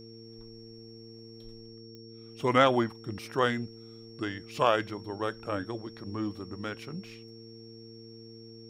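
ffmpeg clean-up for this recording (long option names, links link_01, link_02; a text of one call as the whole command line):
ffmpeg -i in.wav -af "adeclick=threshold=4,bandreject=frequency=113.5:width_type=h:width=4,bandreject=frequency=227:width_type=h:width=4,bandreject=frequency=340.5:width_type=h:width=4,bandreject=frequency=454:width_type=h:width=4,bandreject=frequency=5500:width=30" out.wav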